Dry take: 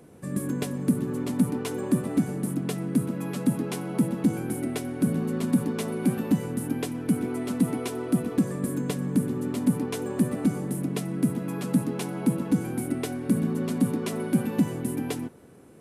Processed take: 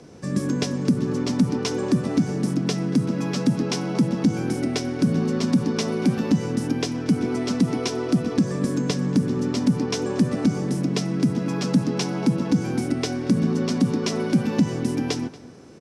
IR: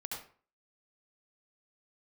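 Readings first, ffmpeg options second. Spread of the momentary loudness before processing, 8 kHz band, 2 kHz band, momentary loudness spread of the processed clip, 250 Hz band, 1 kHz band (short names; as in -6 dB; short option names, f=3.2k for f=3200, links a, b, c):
5 LU, +3.5 dB, +5.5 dB, 4 LU, +4.0 dB, +5.0 dB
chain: -filter_complex "[0:a]lowpass=f=5.5k:t=q:w=4.3,acrossover=split=210[a][b];[b]acompressor=threshold=-26dB:ratio=6[c];[a][c]amix=inputs=2:normalize=0,asplit=2[d][e];[e]adelay=233.2,volume=-19dB,highshelf=f=4k:g=-5.25[f];[d][f]amix=inputs=2:normalize=0,volume=5.5dB"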